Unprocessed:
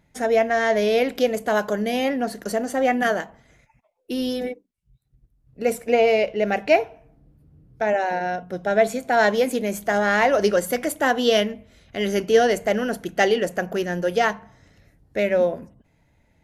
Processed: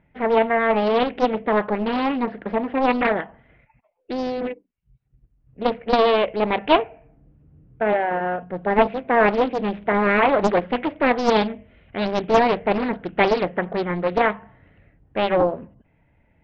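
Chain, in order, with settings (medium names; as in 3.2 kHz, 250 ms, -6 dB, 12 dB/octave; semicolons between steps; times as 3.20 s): steep low-pass 3 kHz 48 dB/octave; loudspeaker Doppler distortion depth 0.87 ms; trim +1 dB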